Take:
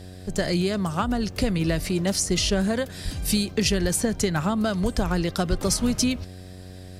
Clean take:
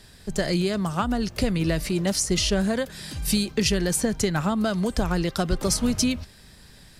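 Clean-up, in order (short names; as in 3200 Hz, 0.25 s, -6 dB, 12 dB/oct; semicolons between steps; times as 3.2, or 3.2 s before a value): de-hum 92.1 Hz, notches 8; 3.04–3.16 HPF 140 Hz 24 dB/oct; 3.81–3.93 HPF 140 Hz 24 dB/oct; 4.82–4.94 HPF 140 Hz 24 dB/oct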